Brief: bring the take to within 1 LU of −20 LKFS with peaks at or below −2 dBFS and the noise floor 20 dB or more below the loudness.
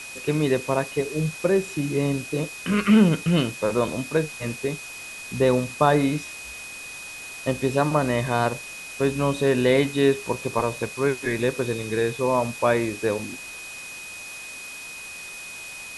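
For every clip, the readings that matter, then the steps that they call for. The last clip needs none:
interfering tone 2,500 Hz; level of the tone −37 dBFS; background noise floor −38 dBFS; target noise floor −44 dBFS; integrated loudness −23.5 LKFS; sample peak −4.0 dBFS; target loudness −20.0 LKFS
→ notch filter 2,500 Hz, Q 30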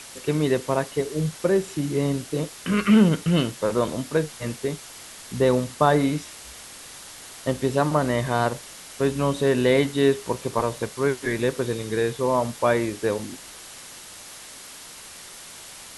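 interfering tone none found; background noise floor −42 dBFS; target noise floor −44 dBFS
→ broadband denoise 6 dB, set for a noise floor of −42 dBFS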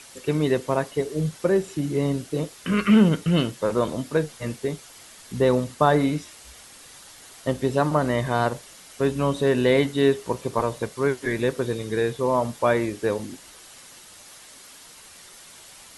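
background noise floor −47 dBFS; integrated loudness −23.5 LKFS; sample peak −4.0 dBFS; target loudness −20.0 LKFS
→ level +3.5 dB
brickwall limiter −2 dBFS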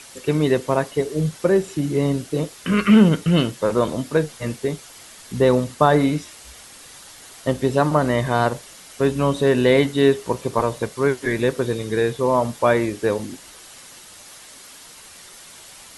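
integrated loudness −20.0 LKFS; sample peak −2.0 dBFS; background noise floor −44 dBFS

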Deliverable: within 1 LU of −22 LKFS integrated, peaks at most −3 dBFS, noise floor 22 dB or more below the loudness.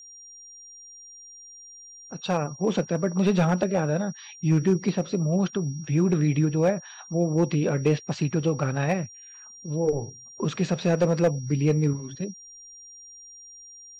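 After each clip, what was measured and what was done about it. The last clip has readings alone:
share of clipped samples 0.5%; peaks flattened at −14.0 dBFS; interfering tone 5,700 Hz; level of the tone −44 dBFS; integrated loudness −25.5 LKFS; sample peak −14.0 dBFS; target loudness −22.0 LKFS
→ clipped peaks rebuilt −14 dBFS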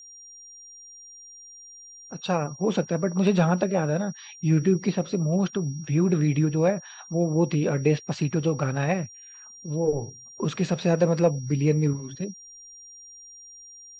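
share of clipped samples 0.0%; interfering tone 5,700 Hz; level of the tone −44 dBFS
→ notch filter 5,700 Hz, Q 30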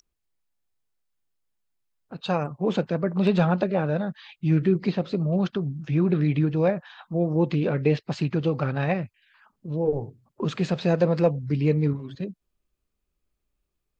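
interfering tone none found; integrated loudness −25.0 LKFS; sample peak −8.5 dBFS; target loudness −22.0 LKFS
→ level +3 dB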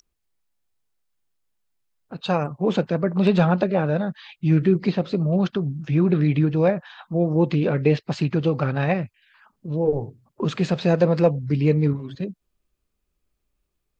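integrated loudness −22.0 LKFS; sample peak −5.5 dBFS; background noise floor −77 dBFS

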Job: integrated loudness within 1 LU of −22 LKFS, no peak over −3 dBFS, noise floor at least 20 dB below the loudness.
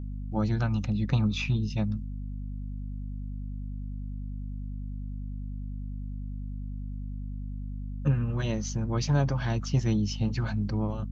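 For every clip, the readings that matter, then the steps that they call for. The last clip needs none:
mains hum 50 Hz; hum harmonics up to 250 Hz; level of the hum −33 dBFS; integrated loudness −31.5 LKFS; sample peak −12.0 dBFS; target loudness −22.0 LKFS
→ mains-hum notches 50/100/150/200/250 Hz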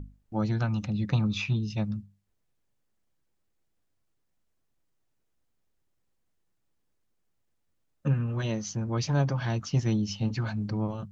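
mains hum none found; integrated loudness −29.5 LKFS; sample peak −13.5 dBFS; target loudness −22.0 LKFS
→ level +7.5 dB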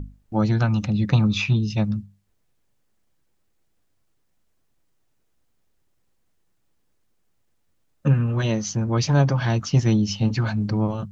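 integrated loudness −22.0 LKFS; sample peak −6.0 dBFS; background noise floor −67 dBFS

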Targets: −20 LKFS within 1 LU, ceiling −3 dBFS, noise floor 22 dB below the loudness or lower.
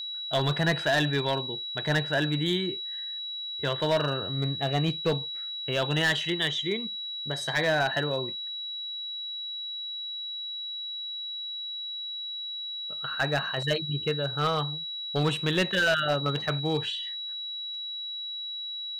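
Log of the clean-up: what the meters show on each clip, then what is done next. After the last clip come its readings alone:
share of clipped samples 0.7%; peaks flattened at −19.0 dBFS; interfering tone 3,900 Hz; level of the tone −33 dBFS; integrated loudness −28.5 LKFS; sample peak −19.0 dBFS; target loudness −20.0 LKFS
→ clipped peaks rebuilt −19 dBFS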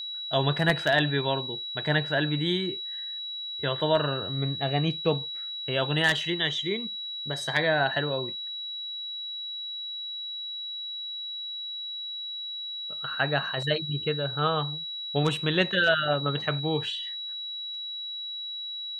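share of clipped samples 0.0%; interfering tone 3,900 Hz; level of the tone −33 dBFS
→ notch filter 3,900 Hz, Q 30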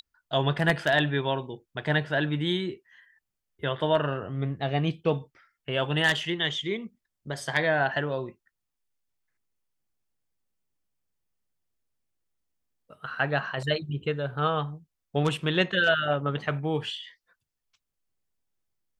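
interfering tone none found; integrated loudness −27.5 LKFS; sample peak −9.5 dBFS; target loudness −20.0 LKFS
→ level +7.5 dB
brickwall limiter −3 dBFS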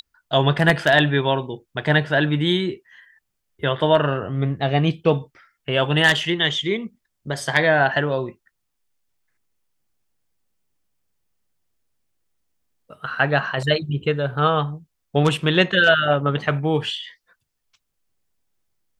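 integrated loudness −20.0 LKFS; sample peak −3.0 dBFS; background noise floor −76 dBFS

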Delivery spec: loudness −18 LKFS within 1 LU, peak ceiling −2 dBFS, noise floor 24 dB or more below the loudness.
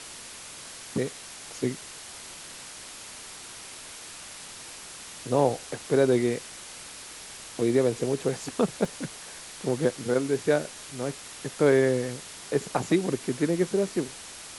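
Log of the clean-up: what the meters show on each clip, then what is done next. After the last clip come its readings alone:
number of dropouts 1; longest dropout 1.5 ms; background noise floor −43 dBFS; target noise floor −52 dBFS; integrated loudness −27.5 LKFS; sample peak −9.5 dBFS; target loudness −18.0 LKFS
→ repair the gap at 0:08.85, 1.5 ms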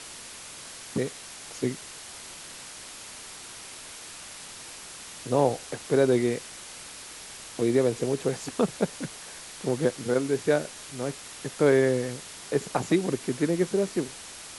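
number of dropouts 0; background noise floor −43 dBFS; target noise floor −52 dBFS
→ noise reduction from a noise print 9 dB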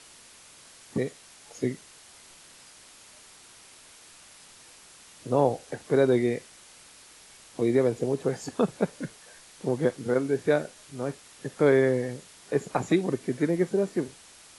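background noise floor −52 dBFS; integrated loudness −27.0 LKFS; sample peak −10.0 dBFS; target loudness −18.0 LKFS
→ level +9 dB
brickwall limiter −2 dBFS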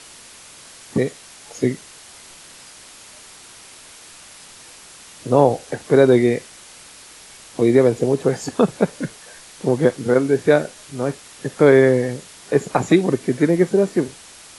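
integrated loudness −18.5 LKFS; sample peak −2.0 dBFS; background noise floor −43 dBFS

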